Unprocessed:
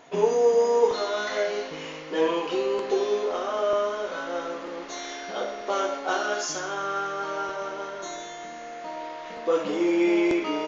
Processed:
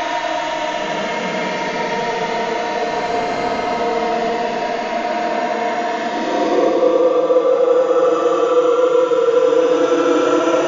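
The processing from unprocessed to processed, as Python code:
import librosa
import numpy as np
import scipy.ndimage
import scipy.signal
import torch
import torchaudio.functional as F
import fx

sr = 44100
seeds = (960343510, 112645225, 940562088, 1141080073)

y = fx.paulstretch(x, sr, seeds[0], factor=33.0, window_s=0.05, from_s=9.27)
y = fx.rider(y, sr, range_db=10, speed_s=0.5)
y = y * 10.0 ** (7.5 / 20.0)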